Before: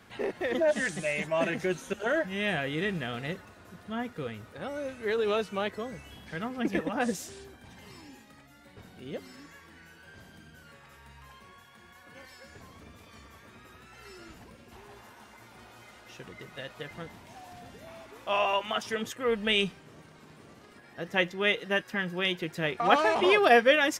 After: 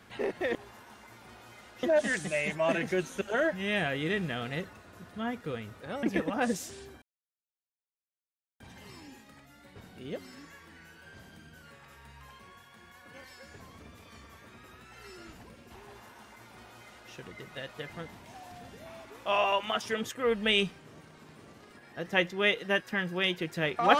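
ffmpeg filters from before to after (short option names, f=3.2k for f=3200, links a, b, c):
-filter_complex "[0:a]asplit=5[a][b][c][d][e];[a]atrim=end=0.552[f];[b]atrim=start=14.848:end=16.132[g];[c]atrim=start=0.548:end=4.752[h];[d]atrim=start=6.618:end=7.61,asetpts=PTS-STARTPTS,afade=t=out:st=0.988:d=0.004:c=hsin,apad=pad_dur=1.58[i];[e]atrim=start=7.61,asetpts=PTS-STARTPTS,afade=t=in:d=0.004:c=hsin[j];[f][g]acrossfade=d=0.004:c1=hsin:c2=hsin[k];[k][h]acrossfade=d=0.004:c1=hsin:c2=hsin[l];[i][j]concat=n=2:v=0:a=1[m];[l][m]acrossfade=d=0.004:c1=hsin:c2=hsin"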